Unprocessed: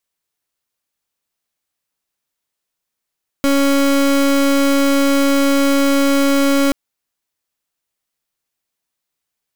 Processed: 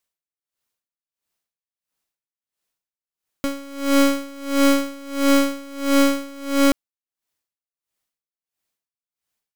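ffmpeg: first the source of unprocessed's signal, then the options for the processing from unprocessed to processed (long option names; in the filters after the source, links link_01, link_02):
-f lavfi -i "aevalsrc='0.211*(2*lt(mod(278*t,1),0.31)-1)':duration=3.28:sample_rate=44100"
-af "aeval=exprs='val(0)*pow(10,-24*(0.5-0.5*cos(2*PI*1.5*n/s))/20)':channel_layout=same"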